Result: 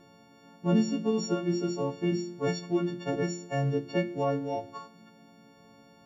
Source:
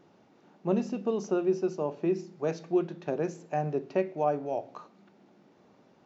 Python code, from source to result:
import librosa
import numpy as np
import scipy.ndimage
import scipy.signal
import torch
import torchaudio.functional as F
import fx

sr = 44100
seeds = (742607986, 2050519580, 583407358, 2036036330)

y = fx.freq_snap(x, sr, grid_st=4)
y = fx.low_shelf(y, sr, hz=290.0, db=9.5)
y = fx.hum_notches(y, sr, base_hz=50, count=7)
y = fx.dynamic_eq(y, sr, hz=650.0, q=1.3, threshold_db=-39.0, ratio=4.0, max_db=-5)